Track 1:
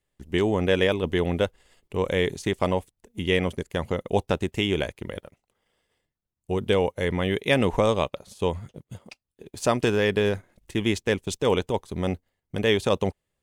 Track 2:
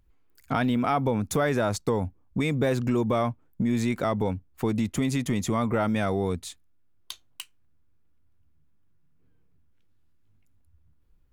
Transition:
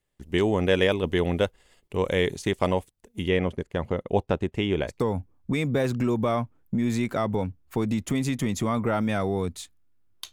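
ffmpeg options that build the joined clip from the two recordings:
-filter_complex "[0:a]asplit=3[s0][s1][s2];[s0]afade=t=out:st=3.27:d=0.02[s3];[s1]lowpass=f=1800:p=1,afade=t=in:st=3.27:d=0.02,afade=t=out:st=5.01:d=0.02[s4];[s2]afade=t=in:st=5.01:d=0.02[s5];[s3][s4][s5]amix=inputs=3:normalize=0,apad=whole_dur=10.32,atrim=end=10.32,atrim=end=5.01,asetpts=PTS-STARTPTS[s6];[1:a]atrim=start=1.74:end=7.19,asetpts=PTS-STARTPTS[s7];[s6][s7]acrossfade=d=0.14:c1=tri:c2=tri"

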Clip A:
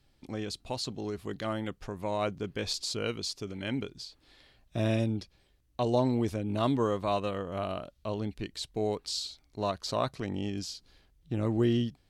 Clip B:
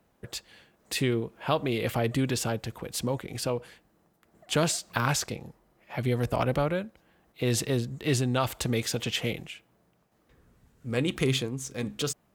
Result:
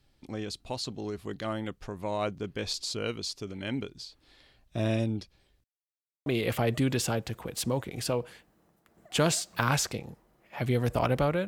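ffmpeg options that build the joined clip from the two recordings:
-filter_complex "[0:a]apad=whole_dur=11.47,atrim=end=11.47,asplit=2[s0][s1];[s0]atrim=end=5.64,asetpts=PTS-STARTPTS,afade=t=out:st=5.636:d=0.004:c=hsin[s2];[s1]atrim=start=5.64:end=6.26,asetpts=PTS-STARTPTS,volume=0[s3];[1:a]atrim=start=1.63:end=6.84,asetpts=PTS-STARTPTS,afade=t=in:d=0.004:c=hsin[s4];[s2][s3][s4]concat=n=3:v=0:a=1"

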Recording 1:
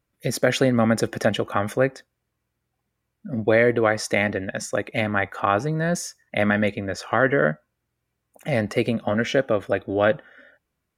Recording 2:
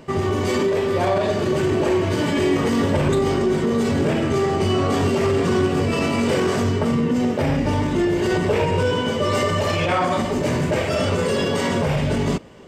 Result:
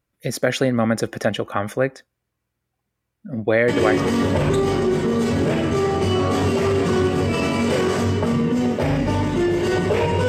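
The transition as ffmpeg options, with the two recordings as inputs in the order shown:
-filter_complex "[0:a]apad=whole_dur=10.28,atrim=end=10.28,atrim=end=4,asetpts=PTS-STARTPTS[s0];[1:a]atrim=start=2.27:end=8.87,asetpts=PTS-STARTPTS[s1];[s0][s1]acrossfade=d=0.32:c1=log:c2=log"

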